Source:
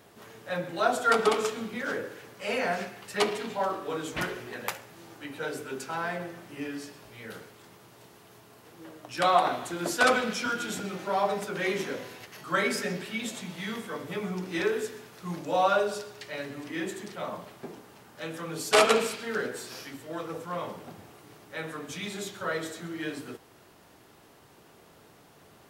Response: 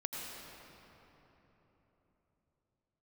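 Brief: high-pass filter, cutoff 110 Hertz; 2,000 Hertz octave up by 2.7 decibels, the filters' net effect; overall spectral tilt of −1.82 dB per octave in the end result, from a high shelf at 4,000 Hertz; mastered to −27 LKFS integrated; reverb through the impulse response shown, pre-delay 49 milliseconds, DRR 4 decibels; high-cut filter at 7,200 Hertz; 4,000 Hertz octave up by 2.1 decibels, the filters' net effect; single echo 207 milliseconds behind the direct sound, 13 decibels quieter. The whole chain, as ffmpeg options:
-filter_complex "[0:a]highpass=110,lowpass=7200,equalizer=frequency=2000:width_type=o:gain=4,highshelf=frequency=4000:gain=-7,equalizer=frequency=4000:width_type=o:gain=5.5,aecho=1:1:207:0.224,asplit=2[link_01][link_02];[1:a]atrim=start_sample=2205,adelay=49[link_03];[link_02][link_03]afir=irnorm=-1:irlink=0,volume=-5.5dB[link_04];[link_01][link_04]amix=inputs=2:normalize=0,volume=0.5dB"

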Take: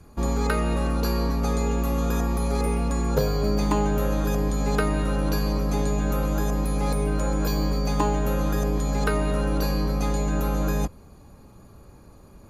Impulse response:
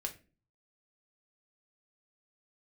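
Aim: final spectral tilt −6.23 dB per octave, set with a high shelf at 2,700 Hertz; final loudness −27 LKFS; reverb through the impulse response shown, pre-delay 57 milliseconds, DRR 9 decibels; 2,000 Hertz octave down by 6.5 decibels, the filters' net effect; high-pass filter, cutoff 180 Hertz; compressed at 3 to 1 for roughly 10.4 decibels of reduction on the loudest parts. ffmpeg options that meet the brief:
-filter_complex "[0:a]highpass=180,equalizer=frequency=2000:width_type=o:gain=-7.5,highshelf=frequency=2700:gain=-4,acompressor=threshold=-34dB:ratio=3,asplit=2[link_01][link_02];[1:a]atrim=start_sample=2205,adelay=57[link_03];[link_02][link_03]afir=irnorm=-1:irlink=0,volume=-8.5dB[link_04];[link_01][link_04]amix=inputs=2:normalize=0,volume=8.5dB"

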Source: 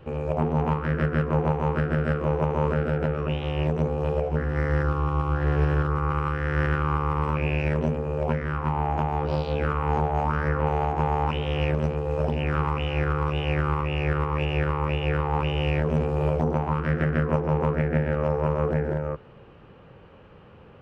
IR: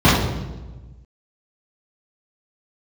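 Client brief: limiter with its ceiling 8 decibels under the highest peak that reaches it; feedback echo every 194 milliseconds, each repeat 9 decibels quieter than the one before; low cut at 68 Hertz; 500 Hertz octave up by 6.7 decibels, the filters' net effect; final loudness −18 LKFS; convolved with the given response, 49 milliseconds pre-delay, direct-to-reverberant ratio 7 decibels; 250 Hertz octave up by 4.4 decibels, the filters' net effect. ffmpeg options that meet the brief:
-filter_complex "[0:a]highpass=68,equalizer=frequency=250:width_type=o:gain=6,equalizer=frequency=500:width_type=o:gain=6,alimiter=limit=-15dB:level=0:latency=1,aecho=1:1:194|388|582|776:0.355|0.124|0.0435|0.0152,asplit=2[link_01][link_02];[1:a]atrim=start_sample=2205,adelay=49[link_03];[link_02][link_03]afir=irnorm=-1:irlink=0,volume=-33.5dB[link_04];[link_01][link_04]amix=inputs=2:normalize=0,volume=2.5dB"

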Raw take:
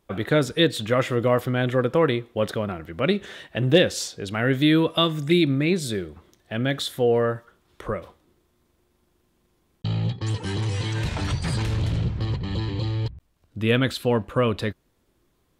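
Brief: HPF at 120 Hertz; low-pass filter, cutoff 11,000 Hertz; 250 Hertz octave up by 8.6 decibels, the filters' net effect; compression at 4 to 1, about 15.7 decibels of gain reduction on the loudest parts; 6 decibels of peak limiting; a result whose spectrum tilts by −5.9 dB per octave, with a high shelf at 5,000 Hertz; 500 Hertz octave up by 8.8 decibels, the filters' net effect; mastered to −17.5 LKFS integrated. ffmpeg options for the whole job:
ffmpeg -i in.wav -af "highpass=120,lowpass=11000,equalizer=frequency=250:width_type=o:gain=9,equalizer=frequency=500:width_type=o:gain=7.5,highshelf=frequency=5000:gain=5,acompressor=threshold=-23dB:ratio=4,volume=10.5dB,alimiter=limit=-6dB:level=0:latency=1" out.wav

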